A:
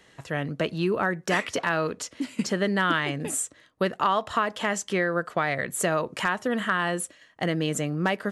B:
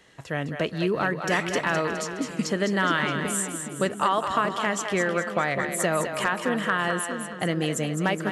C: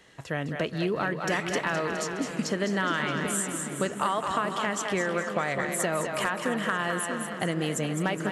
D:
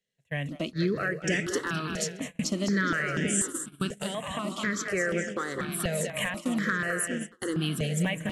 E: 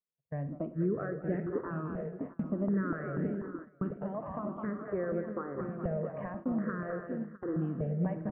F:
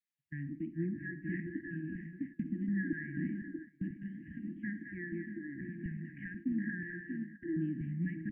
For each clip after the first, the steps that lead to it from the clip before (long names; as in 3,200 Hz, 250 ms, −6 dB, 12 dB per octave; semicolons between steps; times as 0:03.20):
echo with a time of its own for lows and highs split 440 Hz, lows 636 ms, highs 208 ms, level −7 dB
downward compressor 2 to 1, threshold −26 dBFS, peak gain reduction 5 dB; feedback echo with a swinging delay time 237 ms, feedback 79%, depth 199 cents, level −17 dB
noise gate −31 dBFS, range −30 dB; parametric band 870 Hz −15 dB 0.76 octaves; step-sequenced phaser 4.1 Hz 310–4,100 Hz; level +4.5 dB
inverse Chebyshev low-pass filter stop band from 3,900 Hz, stop band 60 dB; on a send: multi-tap delay 56/107/660 ms −14.5/−17.5/−13.5 dB; on the sum: noise gate −40 dBFS, range −13 dB; level −3.5 dB
linear-phase brick-wall band-stop 340–1,600 Hz; three-way crossover with the lows and the highs turned down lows −15 dB, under 390 Hz, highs −15 dB, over 2,100 Hz; level +9.5 dB